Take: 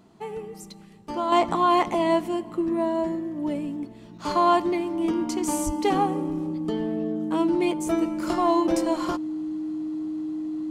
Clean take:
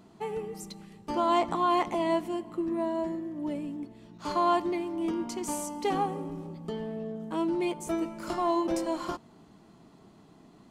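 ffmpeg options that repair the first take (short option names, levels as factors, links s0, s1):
-filter_complex "[0:a]bandreject=f=310:w=30,asplit=3[s0][s1][s2];[s0]afade=t=out:st=5.65:d=0.02[s3];[s1]highpass=f=140:w=0.5412,highpass=f=140:w=1.3066,afade=t=in:st=5.65:d=0.02,afade=t=out:st=5.77:d=0.02[s4];[s2]afade=t=in:st=5.77:d=0.02[s5];[s3][s4][s5]amix=inputs=3:normalize=0,asetnsamples=n=441:p=0,asendcmd='1.32 volume volume -5.5dB',volume=1"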